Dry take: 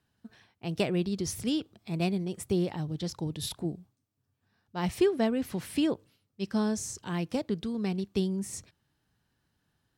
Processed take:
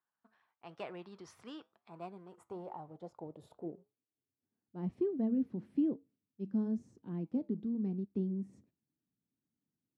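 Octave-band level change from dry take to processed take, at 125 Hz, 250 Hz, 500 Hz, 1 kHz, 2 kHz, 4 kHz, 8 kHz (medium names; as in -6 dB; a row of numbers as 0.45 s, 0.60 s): -10.5 dB, -6.0 dB, -10.5 dB, -11.0 dB, under -15 dB, under -20 dB, under -25 dB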